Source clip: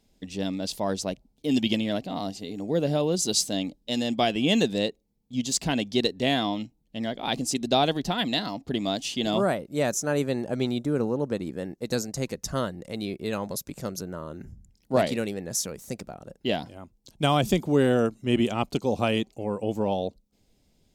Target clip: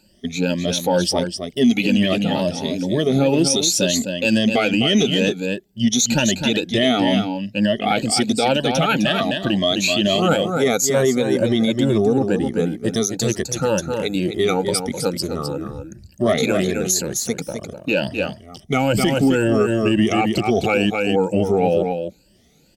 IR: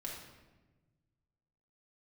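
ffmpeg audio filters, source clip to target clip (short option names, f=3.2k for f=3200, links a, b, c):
-filter_complex "[0:a]afftfilt=real='re*pow(10,19/40*sin(2*PI*(1.3*log(max(b,1)*sr/1024/100)/log(2)-(2.3)*(pts-256)/sr)))':imag='im*pow(10,19/40*sin(2*PI*(1.3*log(max(b,1)*sr/1024/100)/log(2)-(2.3)*(pts-256)/sr)))':win_size=1024:overlap=0.75,highpass=f=120:p=1,bandreject=f=1.1k:w=5.6,asetrate=40572,aresample=44100,asplit=2[a][b];[b]asoftclip=type=tanh:threshold=-13.5dB,volume=-10dB[c];[a][c]amix=inputs=2:normalize=0,aecho=1:1:257:0.398,alimiter=level_in=13dB:limit=-1dB:release=50:level=0:latency=1,volume=-7dB"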